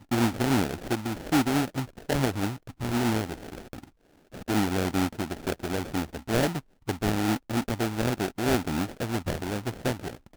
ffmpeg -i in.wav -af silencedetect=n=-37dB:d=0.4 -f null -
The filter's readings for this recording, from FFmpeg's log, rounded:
silence_start: 3.84
silence_end: 4.34 | silence_duration: 0.51